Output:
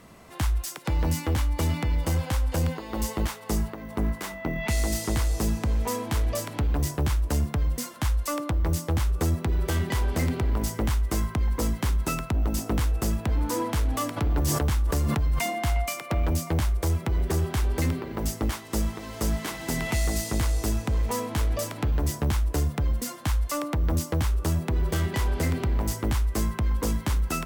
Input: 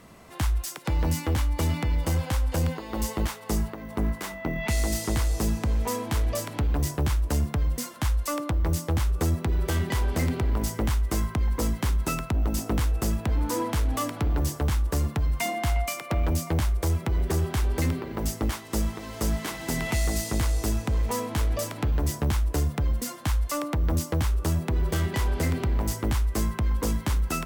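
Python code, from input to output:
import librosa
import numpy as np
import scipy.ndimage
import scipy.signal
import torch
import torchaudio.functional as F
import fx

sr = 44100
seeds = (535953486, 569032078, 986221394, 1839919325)

y = fx.sustainer(x, sr, db_per_s=20.0, at=(14.16, 15.39), fade=0.02)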